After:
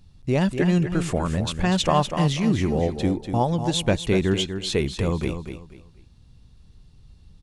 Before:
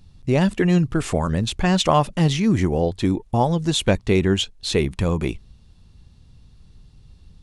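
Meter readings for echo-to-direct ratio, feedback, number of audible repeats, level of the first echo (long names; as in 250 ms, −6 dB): −8.0 dB, 27%, 3, −8.5 dB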